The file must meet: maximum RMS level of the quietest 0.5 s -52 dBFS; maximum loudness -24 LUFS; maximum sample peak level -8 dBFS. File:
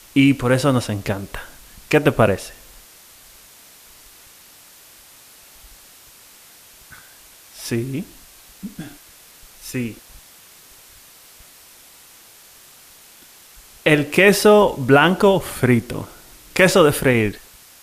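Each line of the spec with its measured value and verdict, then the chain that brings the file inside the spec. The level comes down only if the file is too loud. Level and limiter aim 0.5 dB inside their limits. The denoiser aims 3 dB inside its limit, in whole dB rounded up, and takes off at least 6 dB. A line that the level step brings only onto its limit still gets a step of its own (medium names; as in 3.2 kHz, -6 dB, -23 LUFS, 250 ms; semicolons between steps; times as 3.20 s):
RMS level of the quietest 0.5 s -47 dBFS: fail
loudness -17.0 LUFS: fail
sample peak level -1.5 dBFS: fail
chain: trim -7.5 dB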